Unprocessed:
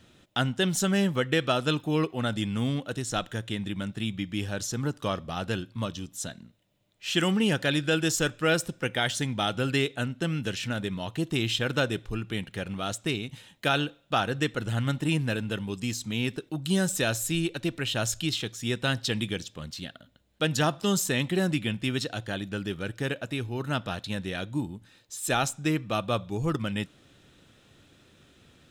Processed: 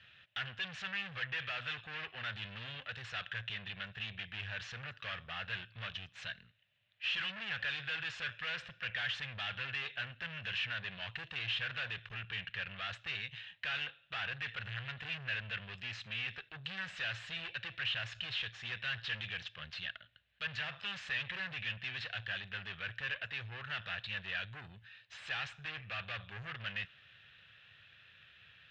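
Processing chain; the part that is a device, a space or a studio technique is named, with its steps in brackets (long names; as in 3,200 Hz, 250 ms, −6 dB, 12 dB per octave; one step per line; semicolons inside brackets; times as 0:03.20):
scooped metal amplifier (tube saturation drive 39 dB, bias 0.75; loudspeaker in its box 89–3,500 Hz, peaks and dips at 110 Hz +4 dB, 920 Hz −4 dB, 1,700 Hz +10 dB, 2,700 Hz +7 dB; guitar amp tone stack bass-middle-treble 10-0-10)
level +7 dB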